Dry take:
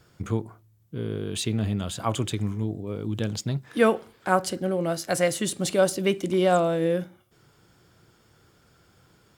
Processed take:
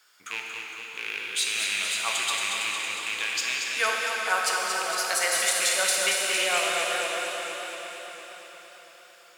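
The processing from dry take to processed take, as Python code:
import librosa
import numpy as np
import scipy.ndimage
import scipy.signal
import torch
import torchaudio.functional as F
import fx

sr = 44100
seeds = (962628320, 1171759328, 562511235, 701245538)

y = fx.rattle_buzz(x, sr, strikes_db=-26.0, level_db=-21.0)
y = scipy.signal.sosfilt(scipy.signal.butter(2, 1500.0, 'highpass', fs=sr, output='sos'), y)
y = fx.rev_plate(y, sr, seeds[0], rt60_s=4.5, hf_ratio=0.9, predelay_ms=0, drr_db=-1.5)
y = fx.echo_warbled(y, sr, ms=229, feedback_pct=68, rate_hz=2.8, cents=58, wet_db=-6.0)
y = y * 10.0 ** (3.5 / 20.0)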